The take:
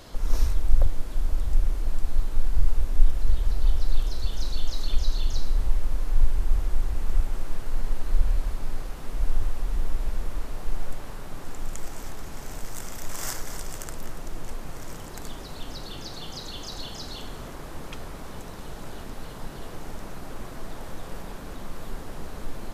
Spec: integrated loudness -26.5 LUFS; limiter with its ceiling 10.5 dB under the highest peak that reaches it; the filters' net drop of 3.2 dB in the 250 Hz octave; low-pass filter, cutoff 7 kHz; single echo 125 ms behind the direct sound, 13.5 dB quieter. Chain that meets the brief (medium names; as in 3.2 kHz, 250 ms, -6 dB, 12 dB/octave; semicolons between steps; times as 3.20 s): low-pass 7 kHz; peaking EQ 250 Hz -4.5 dB; peak limiter -13.5 dBFS; delay 125 ms -13.5 dB; trim +8.5 dB